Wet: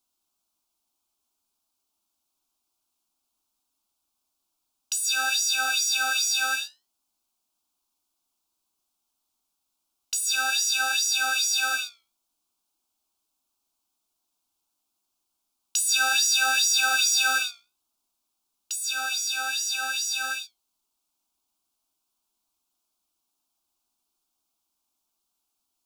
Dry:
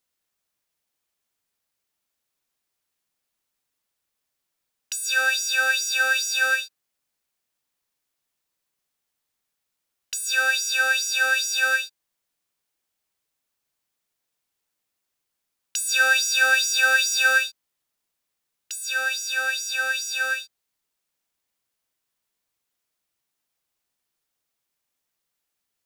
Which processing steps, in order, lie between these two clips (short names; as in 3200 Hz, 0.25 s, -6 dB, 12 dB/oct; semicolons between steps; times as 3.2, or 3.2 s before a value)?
high shelf 10000 Hz -3.5 dB; fixed phaser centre 500 Hz, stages 6; flange 0.54 Hz, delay 7.1 ms, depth 10 ms, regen -70%; gain +8.5 dB